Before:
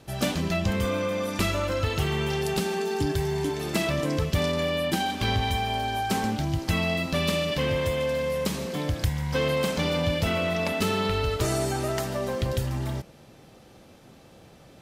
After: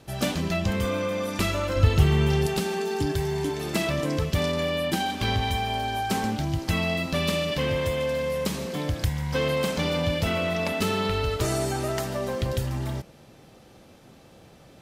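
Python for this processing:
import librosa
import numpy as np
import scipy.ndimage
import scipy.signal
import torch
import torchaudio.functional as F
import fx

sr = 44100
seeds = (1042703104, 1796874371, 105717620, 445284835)

y = fx.low_shelf(x, sr, hz=210.0, db=11.5, at=(1.76, 2.47))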